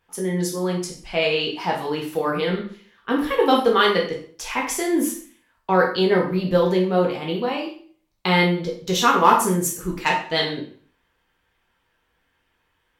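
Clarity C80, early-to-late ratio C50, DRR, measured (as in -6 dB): 11.0 dB, 6.5 dB, -1.5 dB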